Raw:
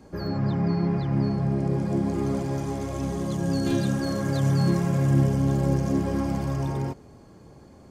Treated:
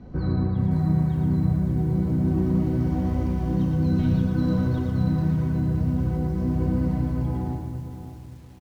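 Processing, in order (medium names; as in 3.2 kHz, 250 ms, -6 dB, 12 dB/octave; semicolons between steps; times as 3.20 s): fade out at the end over 2.42 s; tone controls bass +12 dB, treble -2 dB; hum notches 60/120/180/240/300 Hz; compression 2.5:1, threshold -23 dBFS, peak gain reduction 11 dB; distance through air 150 m; feedback delay 106 ms, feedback 26%, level -5 dB; on a send at -4 dB: reverberation RT60 0.90 s, pre-delay 4 ms; on the sum: speed mistake 48 kHz file played as 44.1 kHz; bit-crushed delay 571 ms, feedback 35%, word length 8-bit, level -10.5 dB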